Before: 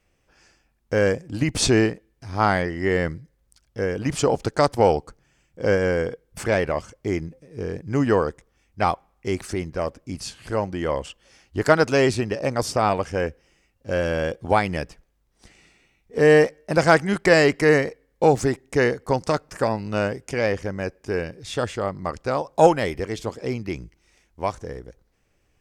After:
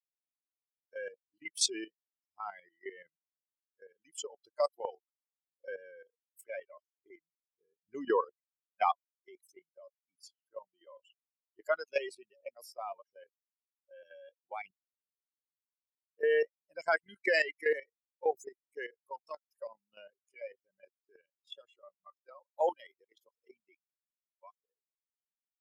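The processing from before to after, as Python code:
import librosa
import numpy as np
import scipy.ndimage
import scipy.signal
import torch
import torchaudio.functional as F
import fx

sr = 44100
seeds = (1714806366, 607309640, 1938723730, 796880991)

y = fx.edit(x, sr, fx.clip_gain(start_s=7.83, length_s=1.09, db=6.0),
    fx.silence(start_s=14.72, length_s=1.46), tone=tone)
y = fx.bin_expand(y, sr, power=3.0)
y = scipy.signal.sosfilt(scipy.signal.butter(4, 430.0, 'highpass', fs=sr, output='sos'), y)
y = fx.level_steps(y, sr, step_db=13)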